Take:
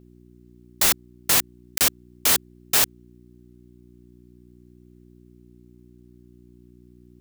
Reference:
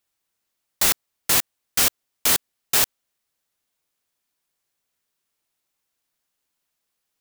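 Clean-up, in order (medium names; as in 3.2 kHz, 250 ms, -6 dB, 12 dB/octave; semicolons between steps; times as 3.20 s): de-hum 60.4 Hz, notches 6; interpolate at 1.78 s, 28 ms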